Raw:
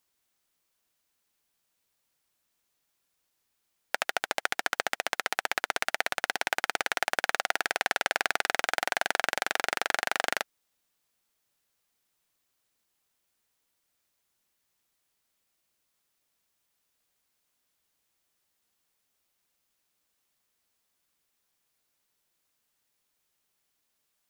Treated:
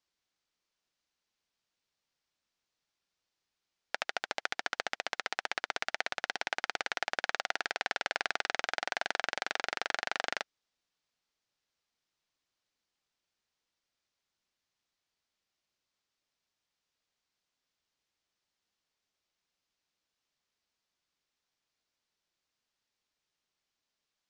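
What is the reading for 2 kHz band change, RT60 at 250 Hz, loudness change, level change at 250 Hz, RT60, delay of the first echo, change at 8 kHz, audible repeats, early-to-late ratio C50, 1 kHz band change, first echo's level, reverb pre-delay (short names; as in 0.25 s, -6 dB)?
-5.5 dB, none, -5.5 dB, -6.0 dB, none, none, -9.0 dB, none, none, -6.0 dB, none, none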